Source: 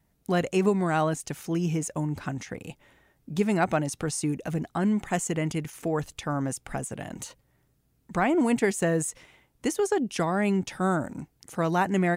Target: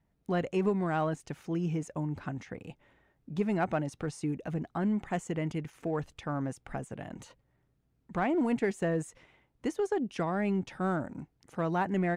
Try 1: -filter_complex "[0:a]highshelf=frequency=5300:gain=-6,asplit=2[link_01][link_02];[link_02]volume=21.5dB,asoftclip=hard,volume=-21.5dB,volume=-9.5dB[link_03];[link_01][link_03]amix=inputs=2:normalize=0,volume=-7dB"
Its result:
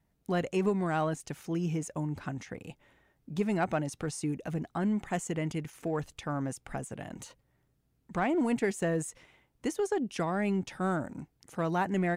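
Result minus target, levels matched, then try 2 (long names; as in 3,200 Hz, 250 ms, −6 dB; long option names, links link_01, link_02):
8,000 Hz band +7.5 dB
-filter_complex "[0:a]highshelf=frequency=5300:gain=-17.5,asplit=2[link_01][link_02];[link_02]volume=21.5dB,asoftclip=hard,volume=-21.5dB,volume=-9.5dB[link_03];[link_01][link_03]amix=inputs=2:normalize=0,volume=-7dB"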